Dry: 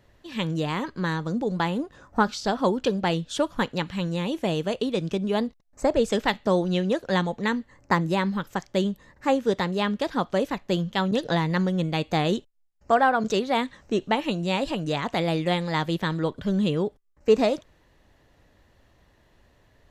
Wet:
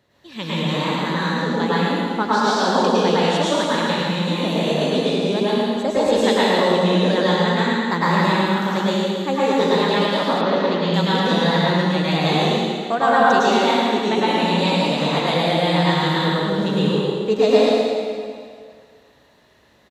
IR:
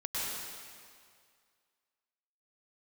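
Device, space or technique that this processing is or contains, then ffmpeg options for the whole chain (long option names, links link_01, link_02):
PA in a hall: -filter_complex "[0:a]highpass=130,equalizer=frequency=3900:width_type=o:width=0.24:gain=6.5,aecho=1:1:110:0.596[link_01];[1:a]atrim=start_sample=2205[link_02];[link_01][link_02]afir=irnorm=-1:irlink=0,asettb=1/sr,asplit=3[link_03][link_04][link_05];[link_03]atrim=end=10.414[link_06];[link_04]atrim=start=10.41:end=10.94,asetpts=PTS-STARTPTS,afade=type=in:duration=0.004:curve=qsin,afade=type=out:start_time=0.526:duration=0.004:curve=qsin,lowpass=frequency=5200:width=0.5412,lowpass=frequency=5200:width=1.3066[link_07];[link_05]atrim=start=10.936[link_08];[link_06][link_07]acrossfade=duration=0.004:curve1=hsin:curve2=qsin[link_09];[link_09][link_08]acrossfade=duration=0.004:curve1=qsin:curve2=hsin,volume=1dB"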